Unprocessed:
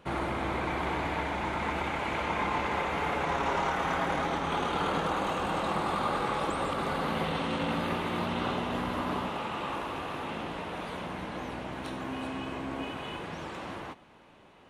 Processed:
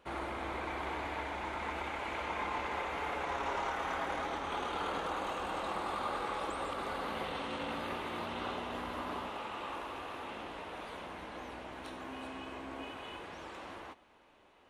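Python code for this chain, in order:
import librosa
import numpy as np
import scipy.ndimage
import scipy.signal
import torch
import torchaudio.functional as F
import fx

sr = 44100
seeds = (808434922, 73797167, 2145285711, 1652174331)

y = fx.peak_eq(x, sr, hz=150.0, db=-11.5, octaves=1.1)
y = F.gain(torch.from_numpy(y), -6.0).numpy()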